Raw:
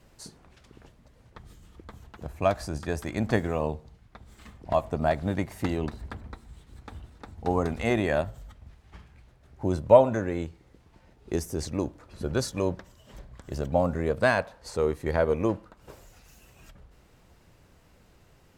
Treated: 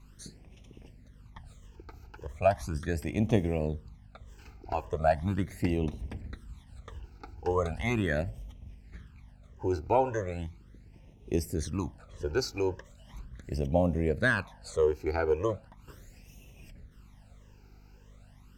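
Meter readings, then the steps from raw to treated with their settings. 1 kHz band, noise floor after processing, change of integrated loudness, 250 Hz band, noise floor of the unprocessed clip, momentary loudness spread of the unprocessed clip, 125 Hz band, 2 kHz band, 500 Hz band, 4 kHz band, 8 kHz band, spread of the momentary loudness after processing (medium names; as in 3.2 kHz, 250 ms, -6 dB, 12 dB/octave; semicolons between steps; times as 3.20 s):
-3.0 dB, -56 dBFS, -3.0 dB, -2.5 dB, -59 dBFS, 18 LU, -1.0 dB, -1.0 dB, -4.5 dB, -2.5 dB, -3.5 dB, 21 LU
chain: phase shifter stages 12, 0.38 Hz, lowest notch 180–1500 Hz; hum 50 Hz, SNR 23 dB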